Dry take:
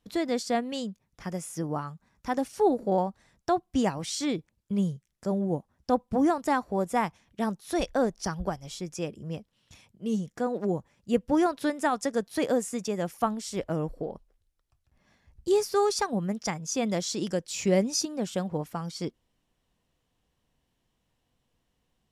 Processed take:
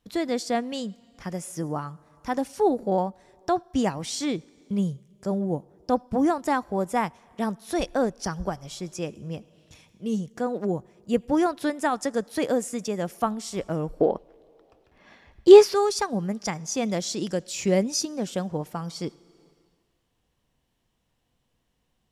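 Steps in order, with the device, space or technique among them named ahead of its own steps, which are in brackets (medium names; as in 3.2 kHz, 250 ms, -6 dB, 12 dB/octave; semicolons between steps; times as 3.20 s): 14.00–15.74 s: FFT filter 110 Hz 0 dB, 330 Hz +12 dB, 3.1 kHz +13 dB, 8.6 kHz -1 dB; compressed reverb return (on a send at -13 dB: reverberation RT60 1.4 s, pre-delay 69 ms + compression 6:1, threshold -41 dBFS, peak gain reduction 29 dB); on the sum: trim +1.5 dB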